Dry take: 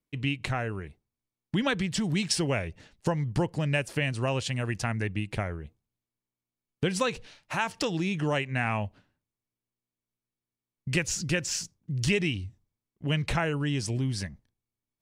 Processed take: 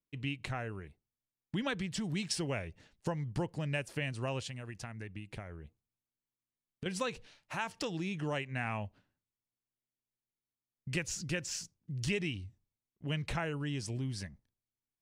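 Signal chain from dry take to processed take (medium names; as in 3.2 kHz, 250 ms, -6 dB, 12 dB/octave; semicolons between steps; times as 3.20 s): 4.45–6.86 s: compression 6:1, threshold -32 dBFS, peak gain reduction 10 dB; trim -8 dB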